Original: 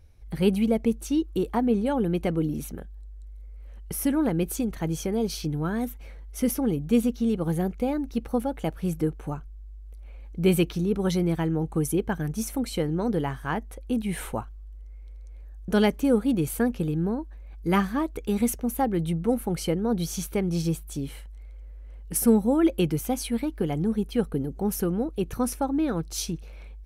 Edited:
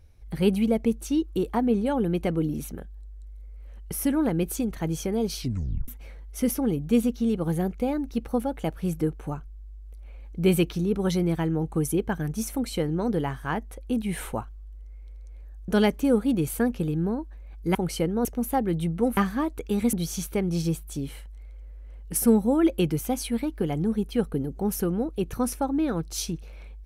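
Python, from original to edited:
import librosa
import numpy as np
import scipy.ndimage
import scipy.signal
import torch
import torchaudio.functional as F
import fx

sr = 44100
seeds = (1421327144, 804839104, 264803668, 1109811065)

y = fx.edit(x, sr, fx.tape_stop(start_s=5.39, length_s=0.49),
    fx.swap(start_s=17.75, length_s=0.76, other_s=19.43, other_length_s=0.5), tone=tone)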